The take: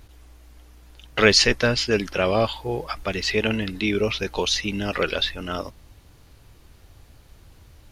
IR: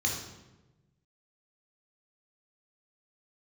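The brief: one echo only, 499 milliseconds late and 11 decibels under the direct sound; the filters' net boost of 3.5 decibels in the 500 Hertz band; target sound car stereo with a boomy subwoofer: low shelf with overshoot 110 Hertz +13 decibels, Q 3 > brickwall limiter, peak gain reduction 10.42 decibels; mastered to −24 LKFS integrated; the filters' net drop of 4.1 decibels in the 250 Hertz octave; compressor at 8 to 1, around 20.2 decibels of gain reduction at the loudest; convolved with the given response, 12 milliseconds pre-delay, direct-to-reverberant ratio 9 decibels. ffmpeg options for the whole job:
-filter_complex "[0:a]equalizer=frequency=250:width_type=o:gain=-3.5,equalizer=frequency=500:width_type=o:gain=6,acompressor=threshold=-30dB:ratio=8,aecho=1:1:499:0.282,asplit=2[link_01][link_02];[1:a]atrim=start_sample=2205,adelay=12[link_03];[link_02][link_03]afir=irnorm=-1:irlink=0,volume=-16dB[link_04];[link_01][link_04]amix=inputs=2:normalize=0,lowshelf=frequency=110:width_type=q:width=3:gain=13,volume=11dB,alimiter=limit=-14.5dB:level=0:latency=1"

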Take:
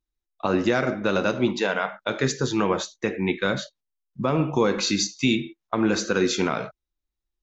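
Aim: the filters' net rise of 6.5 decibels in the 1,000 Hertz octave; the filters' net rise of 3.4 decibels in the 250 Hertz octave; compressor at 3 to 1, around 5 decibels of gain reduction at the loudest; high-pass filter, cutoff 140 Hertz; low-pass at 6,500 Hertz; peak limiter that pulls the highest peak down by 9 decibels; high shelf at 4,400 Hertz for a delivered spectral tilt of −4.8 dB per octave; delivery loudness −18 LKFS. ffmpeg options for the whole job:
ffmpeg -i in.wav -af "highpass=140,lowpass=6500,equalizer=frequency=250:width_type=o:gain=4.5,equalizer=frequency=1000:width_type=o:gain=8.5,highshelf=frequency=4400:gain=-4,acompressor=threshold=-20dB:ratio=3,volume=9.5dB,alimiter=limit=-6dB:level=0:latency=1" out.wav

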